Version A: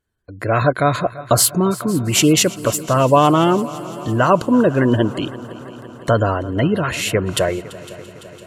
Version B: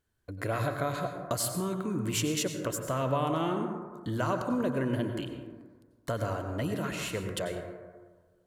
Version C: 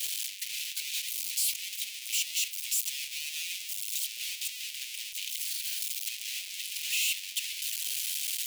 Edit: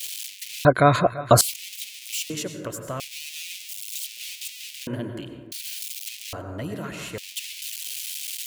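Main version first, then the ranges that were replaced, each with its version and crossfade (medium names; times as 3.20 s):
C
0.65–1.41 s: from A
2.30–3.00 s: from B
4.87–5.52 s: from B
6.33–7.18 s: from B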